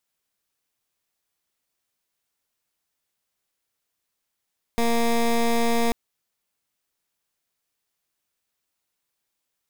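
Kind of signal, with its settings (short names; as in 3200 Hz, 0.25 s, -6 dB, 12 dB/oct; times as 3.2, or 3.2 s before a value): pulse 233 Hz, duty 16% -20.5 dBFS 1.14 s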